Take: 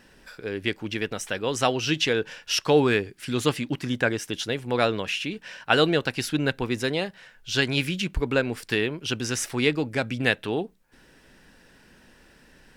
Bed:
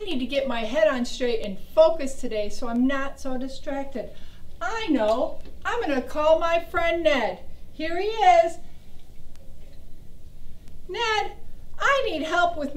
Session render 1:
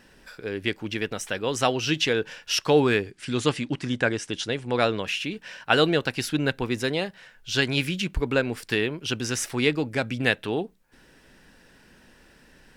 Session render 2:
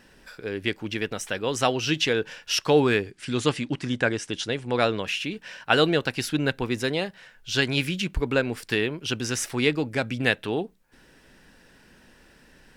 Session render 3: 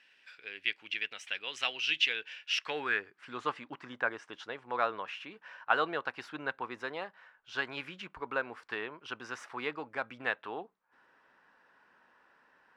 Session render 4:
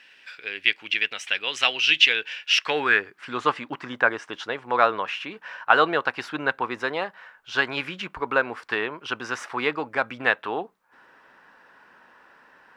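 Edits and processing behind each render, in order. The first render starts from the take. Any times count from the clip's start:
0:03.11–0:05.02: Butterworth low-pass 9,700 Hz
no processing that can be heard
running median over 3 samples; band-pass filter sweep 2,600 Hz → 1,100 Hz, 0:02.46–0:03.21
level +11.5 dB; brickwall limiter −1 dBFS, peak gain reduction 2 dB

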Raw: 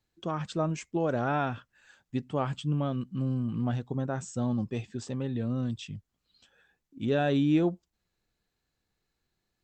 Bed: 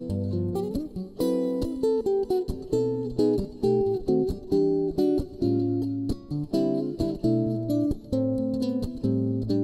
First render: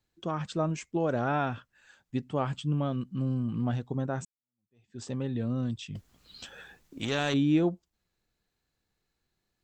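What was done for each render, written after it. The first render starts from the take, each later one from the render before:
0:04.25–0:05.02: fade in exponential
0:05.95–0:07.34: every bin compressed towards the loudest bin 2 to 1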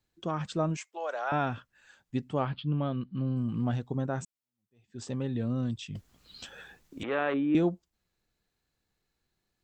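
0:00.77–0:01.32: high-pass filter 610 Hz 24 dB per octave
0:02.45–0:03.37: elliptic low-pass filter 4,400 Hz
0:07.03–0:07.55: loudspeaker in its box 310–2,300 Hz, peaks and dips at 340 Hz +3 dB, 520 Hz +5 dB, 1,200 Hz +5 dB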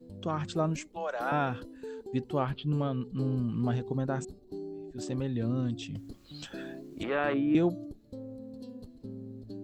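mix in bed −17.5 dB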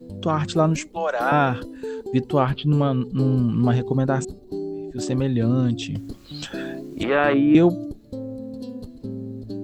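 level +10.5 dB

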